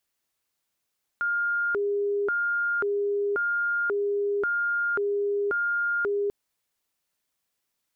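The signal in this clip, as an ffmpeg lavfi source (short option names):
-f lavfi -i "aevalsrc='0.0708*sin(2*PI*(908*t+502/0.93*(0.5-abs(mod(0.93*t,1)-0.5))))':d=5.09:s=44100"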